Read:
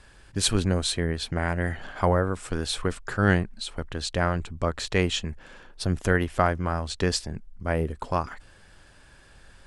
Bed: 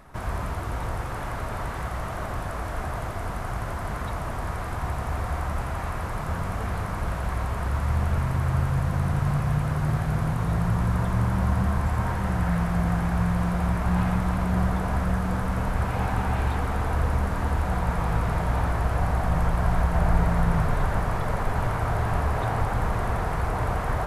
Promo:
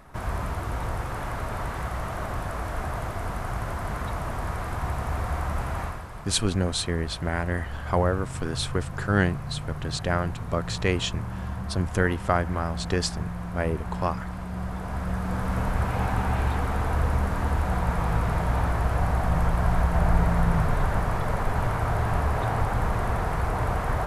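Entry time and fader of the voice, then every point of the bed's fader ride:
5.90 s, −1.0 dB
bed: 0:05.83 0 dB
0:06.06 −9.5 dB
0:14.52 −9.5 dB
0:15.56 0 dB

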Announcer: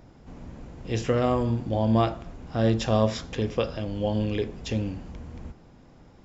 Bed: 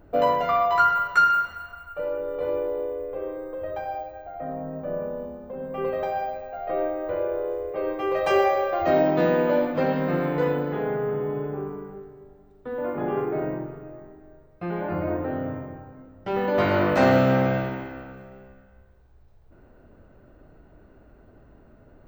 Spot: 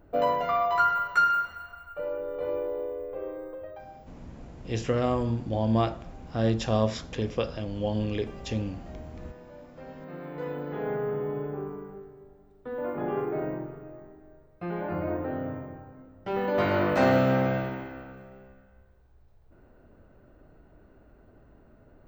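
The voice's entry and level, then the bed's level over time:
3.80 s, −2.5 dB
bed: 0:03.48 −4 dB
0:04.33 −28 dB
0:09.47 −28 dB
0:10.91 −3.5 dB

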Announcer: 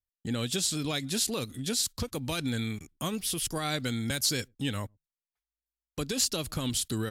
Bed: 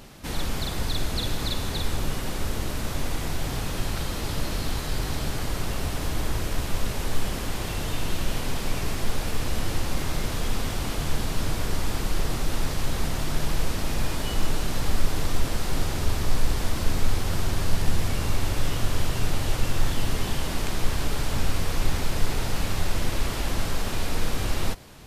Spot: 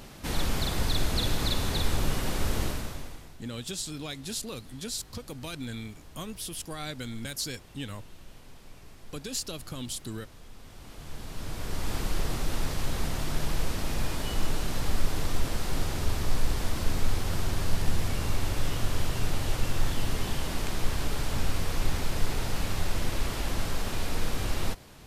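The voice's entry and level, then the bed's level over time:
3.15 s, −6.0 dB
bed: 0:02.65 0 dB
0:03.37 −22.5 dB
0:10.54 −22.5 dB
0:11.94 −3.5 dB

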